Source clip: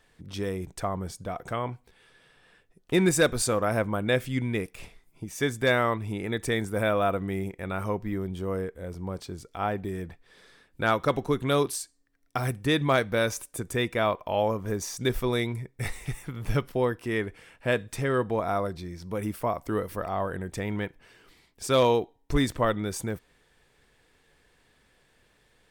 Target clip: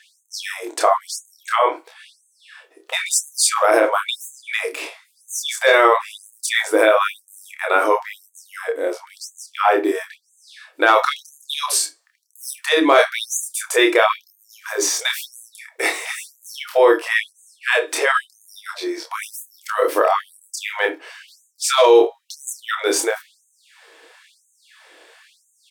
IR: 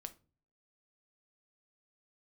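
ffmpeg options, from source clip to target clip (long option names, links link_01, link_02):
-filter_complex "[0:a]highshelf=frequency=11000:gain=-8.5,asplit=2[link_01][link_02];[link_02]adelay=28,volume=-3.5dB[link_03];[link_01][link_03]amix=inputs=2:normalize=0[link_04];[1:a]atrim=start_sample=2205,atrim=end_sample=3528[link_05];[link_04][link_05]afir=irnorm=-1:irlink=0,alimiter=level_in=23dB:limit=-1dB:release=50:level=0:latency=1,afftfilt=real='re*gte(b*sr/1024,260*pow(6300/260,0.5+0.5*sin(2*PI*0.99*pts/sr)))':imag='im*gte(b*sr/1024,260*pow(6300/260,0.5+0.5*sin(2*PI*0.99*pts/sr)))':win_size=1024:overlap=0.75,volume=-2dB"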